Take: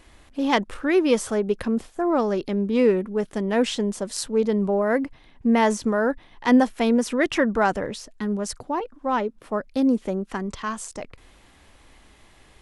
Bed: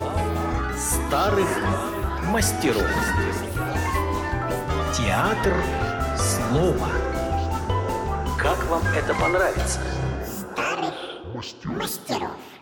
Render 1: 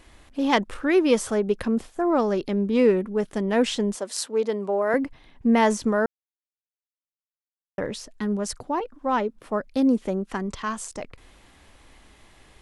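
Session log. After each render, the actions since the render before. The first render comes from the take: 3.95–4.94 s: high-pass 360 Hz; 6.06–7.78 s: mute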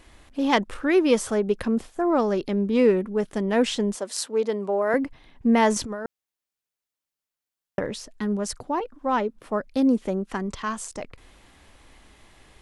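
5.76–7.79 s: compressor with a negative ratio -27 dBFS, ratio -0.5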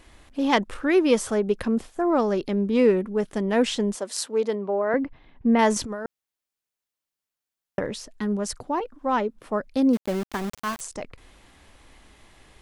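4.55–5.59 s: distance through air 260 m; 9.93–10.81 s: small samples zeroed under -30.5 dBFS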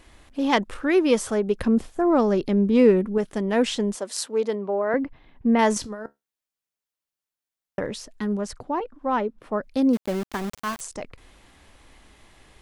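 1.60–3.18 s: bass shelf 320 Hz +6 dB; 5.78–7.79 s: feedback comb 71 Hz, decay 0.18 s, mix 50%; 8.41–9.63 s: treble shelf 4.9 kHz -10.5 dB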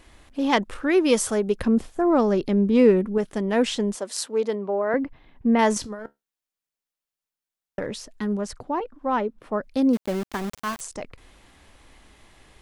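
1.04–1.54 s: treble shelf 4.3 kHz -> 6.4 kHz +8.5 dB; 5.99–7.86 s: partial rectifier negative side -3 dB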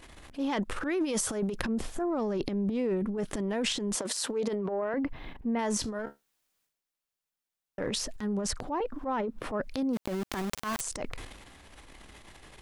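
transient shaper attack -9 dB, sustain +12 dB; compression 6:1, threshold -28 dBFS, peak gain reduction 16 dB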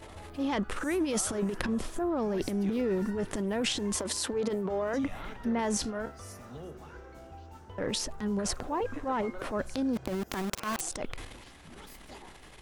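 add bed -23.5 dB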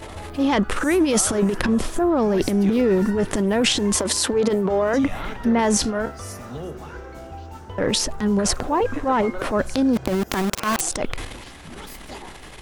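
trim +11 dB; peak limiter -2 dBFS, peak gain reduction 3 dB

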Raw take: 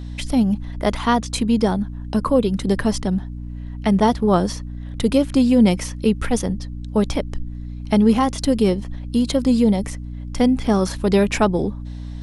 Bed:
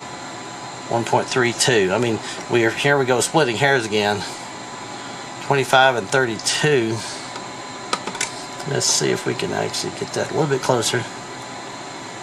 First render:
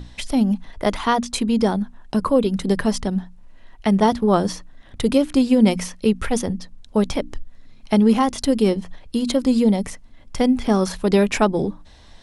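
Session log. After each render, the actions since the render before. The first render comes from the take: hum notches 60/120/180/240/300 Hz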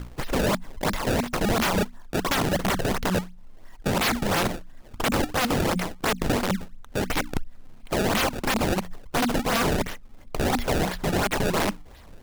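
decimation with a swept rate 24×, swing 160% 2.9 Hz; integer overflow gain 18 dB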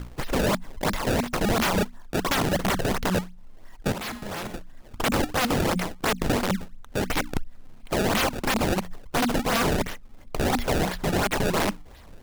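3.92–4.54 s: feedback comb 210 Hz, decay 1.2 s, mix 70%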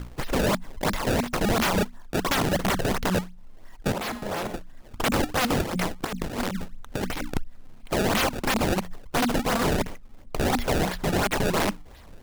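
3.93–4.56 s: peaking EQ 570 Hz +6 dB 1.9 oct; 5.62–7.30 s: compressor with a negative ratio -27 dBFS, ratio -0.5; 9.53–10.48 s: median filter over 25 samples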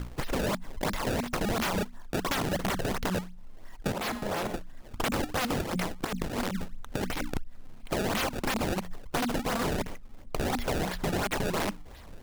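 compression, threshold -27 dBFS, peak gain reduction 6.5 dB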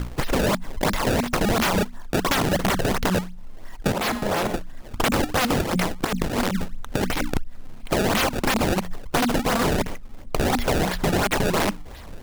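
trim +8 dB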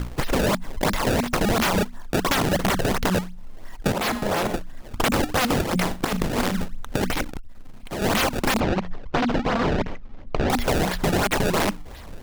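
5.82–6.62 s: flutter echo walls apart 6.7 m, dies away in 0.22 s; 7.22–8.02 s: valve stage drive 27 dB, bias 0.25; 8.60–10.50 s: distance through air 180 m

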